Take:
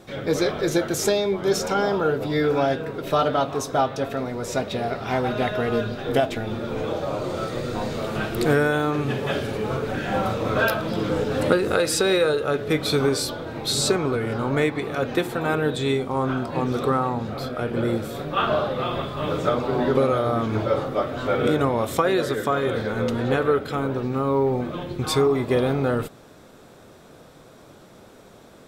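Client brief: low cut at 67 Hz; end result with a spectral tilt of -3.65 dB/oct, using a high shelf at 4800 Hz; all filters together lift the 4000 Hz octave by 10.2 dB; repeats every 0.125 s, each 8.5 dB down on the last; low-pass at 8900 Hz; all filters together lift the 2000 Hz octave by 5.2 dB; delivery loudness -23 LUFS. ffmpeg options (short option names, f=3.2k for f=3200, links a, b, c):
-af "highpass=67,lowpass=8.9k,equalizer=f=2k:t=o:g=4.5,equalizer=f=4k:t=o:g=8,highshelf=f=4.8k:g=6,aecho=1:1:125|250|375|500:0.376|0.143|0.0543|0.0206,volume=-2.5dB"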